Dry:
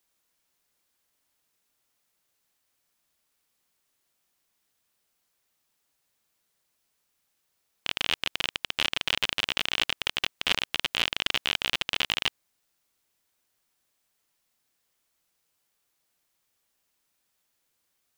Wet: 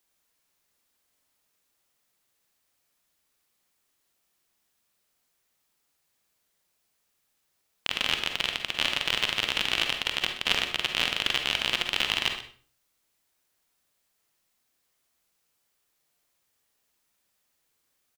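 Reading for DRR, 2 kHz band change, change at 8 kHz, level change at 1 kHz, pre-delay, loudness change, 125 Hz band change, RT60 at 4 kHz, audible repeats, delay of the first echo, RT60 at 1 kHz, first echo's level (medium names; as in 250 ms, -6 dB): 4.5 dB, +1.0 dB, +1.0 dB, +1.5 dB, 40 ms, +1.0 dB, +1.5 dB, 0.40 s, 1, 126 ms, 0.45 s, -14.5 dB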